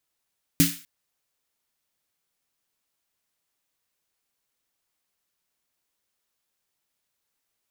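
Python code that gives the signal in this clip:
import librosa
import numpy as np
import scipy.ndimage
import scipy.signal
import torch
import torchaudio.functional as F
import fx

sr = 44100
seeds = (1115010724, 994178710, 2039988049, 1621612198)

y = fx.drum_snare(sr, seeds[0], length_s=0.25, hz=170.0, second_hz=280.0, noise_db=-3.0, noise_from_hz=1600.0, decay_s=0.25, noise_decay_s=0.41)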